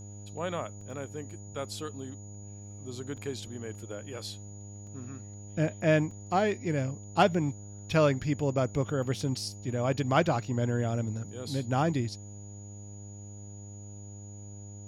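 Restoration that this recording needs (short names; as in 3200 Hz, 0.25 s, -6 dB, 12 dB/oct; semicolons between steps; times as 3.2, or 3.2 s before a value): de-hum 101.9 Hz, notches 9; notch 6800 Hz, Q 30; interpolate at 0.81/3.17/4.87/6.11, 3.4 ms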